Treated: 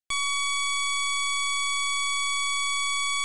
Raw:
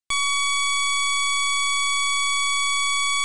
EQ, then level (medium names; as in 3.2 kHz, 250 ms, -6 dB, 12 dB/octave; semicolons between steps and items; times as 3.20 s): band-stop 920 Hz, Q 7.6; -4.5 dB